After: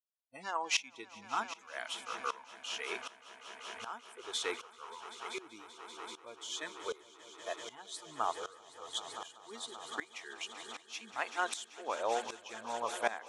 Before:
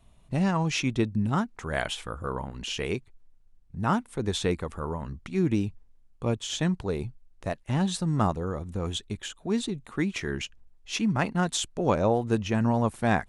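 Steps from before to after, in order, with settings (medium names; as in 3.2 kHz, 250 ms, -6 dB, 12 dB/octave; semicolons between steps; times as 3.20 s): high-pass 730 Hz 12 dB/octave; spectral noise reduction 30 dB; on a send: echo with a slow build-up 193 ms, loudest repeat 5, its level -16 dB; on the sum: sawtooth tremolo in dB swelling 1.3 Hz, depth 18 dB; trim +1.5 dB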